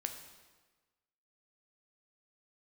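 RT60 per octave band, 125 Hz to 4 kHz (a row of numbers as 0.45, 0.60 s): 1.3, 1.3, 1.3, 1.3, 1.2, 1.1 s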